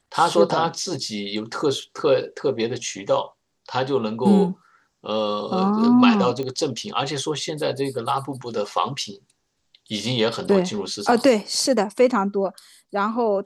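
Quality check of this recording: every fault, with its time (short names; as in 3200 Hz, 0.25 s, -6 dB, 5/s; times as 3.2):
6.43 pop -18 dBFS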